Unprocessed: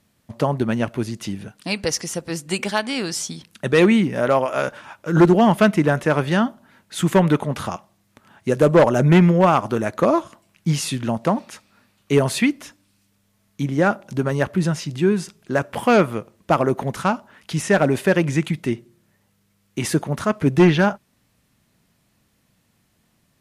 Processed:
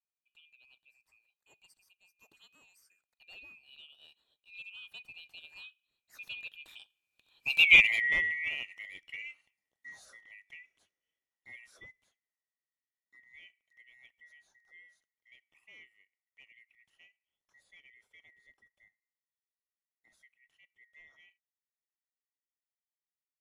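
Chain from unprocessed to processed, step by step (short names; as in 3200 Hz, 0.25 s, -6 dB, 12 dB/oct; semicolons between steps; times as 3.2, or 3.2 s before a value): band-swap scrambler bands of 2000 Hz; Doppler pass-by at 7.72, 41 m/s, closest 4.7 m; gain -5.5 dB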